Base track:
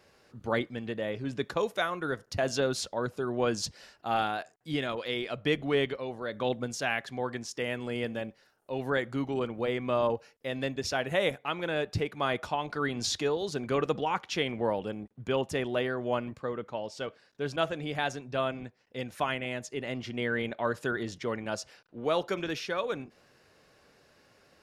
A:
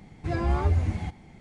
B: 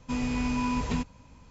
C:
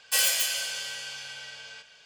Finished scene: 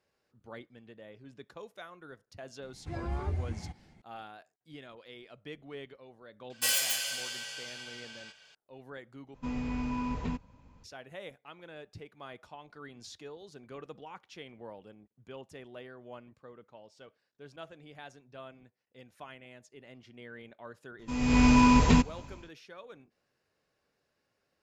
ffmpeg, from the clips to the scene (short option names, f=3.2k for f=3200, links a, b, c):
-filter_complex "[2:a]asplit=2[a][b];[0:a]volume=-17dB[c];[a]aemphasis=mode=reproduction:type=75kf[d];[b]dynaudnorm=f=120:g=5:m=16dB[e];[c]asplit=2[f][g];[f]atrim=end=9.344[h];[d]atrim=end=1.5,asetpts=PTS-STARTPTS,volume=-5dB[i];[g]atrim=start=10.836[j];[1:a]atrim=end=1.4,asetpts=PTS-STARTPTS,volume=-10dB,afade=t=in:d=0.004:c=hsin,afade=t=out:st=1.396:d=0.004:c=hsin,adelay=2620[k];[3:a]atrim=end=2.05,asetpts=PTS-STARTPTS,volume=-4.5dB,afade=t=in:d=0.004:c=hsin,afade=t=out:st=2.046:d=0.004:c=hsin,adelay=286650S[l];[e]atrim=end=1.5,asetpts=PTS-STARTPTS,volume=-6.5dB,afade=t=in:d=0.004:c=hsin,afade=t=out:st=1.496:d=0.004:c=hsin,adelay=20990[m];[h][i]acrossfade=d=0.004:c1=hsin:c2=hsin[n];[n][j]acrossfade=d=0.004:c1=hsin:c2=hsin[o];[o][k][l][m]amix=inputs=4:normalize=0"